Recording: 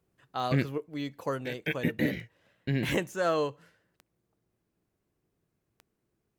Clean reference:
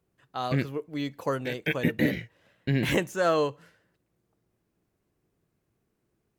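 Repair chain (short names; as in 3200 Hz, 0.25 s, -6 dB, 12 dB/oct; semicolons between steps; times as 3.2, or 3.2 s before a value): de-click; gain correction +3.5 dB, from 0.78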